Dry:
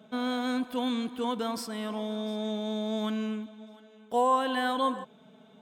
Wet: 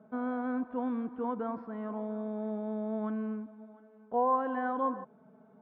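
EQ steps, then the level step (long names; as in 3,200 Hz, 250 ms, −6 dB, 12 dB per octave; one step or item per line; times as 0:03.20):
low-pass filter 1,500 Hz 24 dB per octave
−3.0 dB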